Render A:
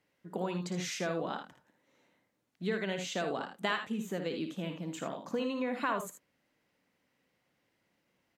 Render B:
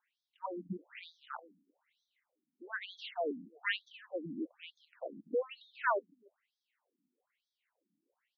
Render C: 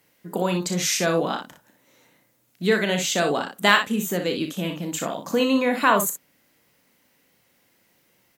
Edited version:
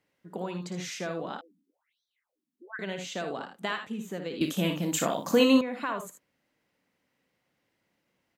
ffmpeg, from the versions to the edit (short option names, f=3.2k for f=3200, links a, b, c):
-filter_complex "[0:a]asplit=3[a][b][c];[a]atrim=end=1.412[d];[1:a]atrim=start=1.408:end=2.792[e];[b]atrim=start=2.788:end=4.412[f];[2:a]atrim=start=4.408:end=5.612[g];[c]atrim=start=5.608[h];[d][e]acrossfade=d=0.004:c1=hsin:c2=hsin[i];[i][f]acrossfade=d=0.004:c1=hsin:c2=hsin[j];[j][g]acrossfade=d=0.004:c1=hsin:c2=hsin[k];[k][h]acrossfade=d=0.004:c1=hsin:c2=hsin"